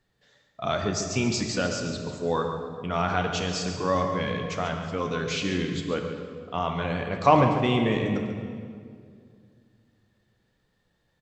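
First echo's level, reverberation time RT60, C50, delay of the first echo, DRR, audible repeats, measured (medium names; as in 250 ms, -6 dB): -10.5 dB, 2.2 s, 4.0 dB, 140 ms, 3.0 dB, 1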